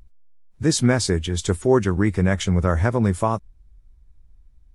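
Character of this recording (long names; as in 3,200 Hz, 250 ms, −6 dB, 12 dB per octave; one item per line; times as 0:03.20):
background noise floor −53 dBFS
spectral slope −5.5 dB per octave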